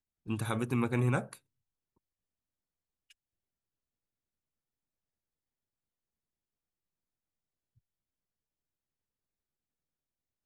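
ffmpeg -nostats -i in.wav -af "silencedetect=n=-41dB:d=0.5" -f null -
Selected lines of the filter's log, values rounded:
silence_start: 1.34
silence_end: 10.45 | silence_duration: 9.12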